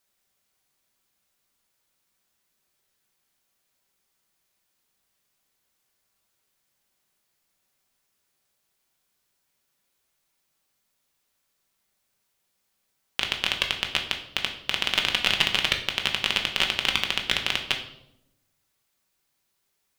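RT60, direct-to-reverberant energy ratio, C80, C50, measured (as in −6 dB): 0.80 s, 2.5 dB, 12.0 dB, 9.0 dB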